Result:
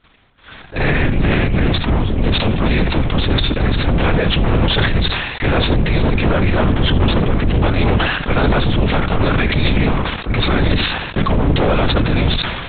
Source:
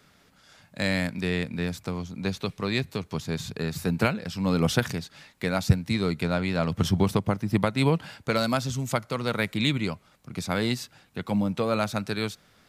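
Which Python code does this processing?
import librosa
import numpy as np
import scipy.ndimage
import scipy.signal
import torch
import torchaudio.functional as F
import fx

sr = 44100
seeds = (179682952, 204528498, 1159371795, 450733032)

p1 = scipy.signal.sosfilt(scipy.signal.butter(2, 94.0, 'highpass', fs=sr, output='sos'), x)
p2 = fx.over_compress(p1, sr, threshold_db=-33.0, ratio=-1.0)
p3 = p1 + F.gain(torch.from_numpy(p2), 0.0).numpy()
p4 = fx.leveller(p3, sr, passes=5)
p5 = 10.0 ** (-9.5 / 20.0) * np.tanh(p4 / 10.0 ** (-9.5 / 20.0))
p6 = p5 + fx.echo_single(p5, sr, ms=71, db=-14.0, dry=0)
p7 = fx.lpc_vocoder(p6, sr, seeds[0], excitation='whisper', order=8)
p8 = fx.sustainer(p7, sr, db_per_s=38.0)
y = F.gain(torch.from_numpy(p8), -1.5).numpy()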